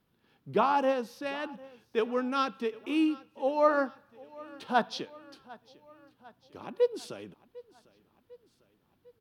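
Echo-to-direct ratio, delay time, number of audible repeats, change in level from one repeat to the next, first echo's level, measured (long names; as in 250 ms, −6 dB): −20.5 dB, 750 ms, 3, −5.0 dB, −22.0 dB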